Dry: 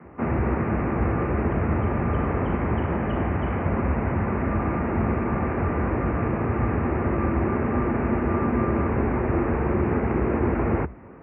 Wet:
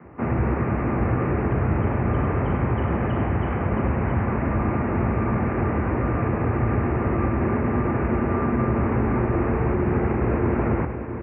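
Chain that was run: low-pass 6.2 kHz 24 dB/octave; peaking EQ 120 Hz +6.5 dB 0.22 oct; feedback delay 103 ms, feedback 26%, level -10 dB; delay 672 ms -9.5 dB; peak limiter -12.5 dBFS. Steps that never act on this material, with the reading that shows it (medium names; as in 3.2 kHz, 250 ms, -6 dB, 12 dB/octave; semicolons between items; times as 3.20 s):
low-pass 6.2 kHz: input has nothing above 2.3 kHz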